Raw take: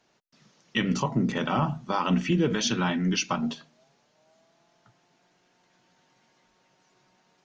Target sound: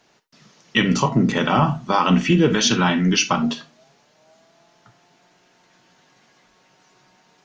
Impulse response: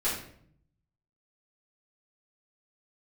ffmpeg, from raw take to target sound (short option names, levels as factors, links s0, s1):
-filter_complex "[0:a]asplit=2[s0][s1];[s1]highpass=f=820:p=1[s2];[1:a]atrim=start_sample=2205,atrim=end_sample=3528[s3];[s2][s3]afir=irnorm=-1:irlink=0,volume=0.211[s4];[s0][s4]amix=inputs=2:normalize=0,volume=2.37"